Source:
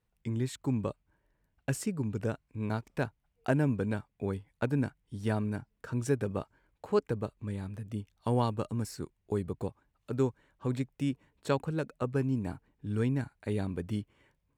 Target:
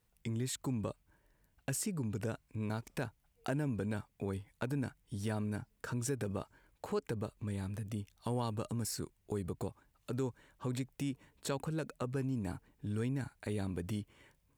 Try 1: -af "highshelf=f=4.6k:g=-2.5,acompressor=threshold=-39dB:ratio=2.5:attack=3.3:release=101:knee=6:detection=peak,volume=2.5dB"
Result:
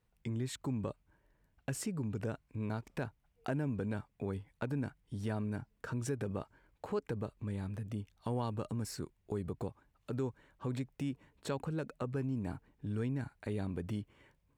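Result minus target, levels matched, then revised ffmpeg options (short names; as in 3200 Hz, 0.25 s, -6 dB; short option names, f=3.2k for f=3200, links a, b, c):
8000 Hz band -5.5 dB
-af "highshelf=f=4.6k:g=9,acompressor=threshold=-39dB:ratio=2.5:attack=3.3:release=101:knee=6:detection=peak,volume=2.5dB"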